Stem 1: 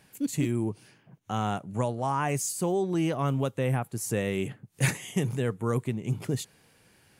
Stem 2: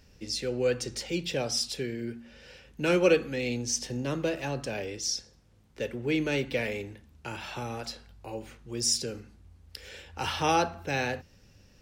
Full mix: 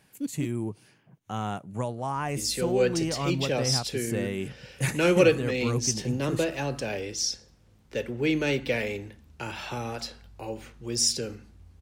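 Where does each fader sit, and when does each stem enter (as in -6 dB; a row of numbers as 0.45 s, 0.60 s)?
-2.5 dB, +2.5 dB; 0.00 s, 2.15 s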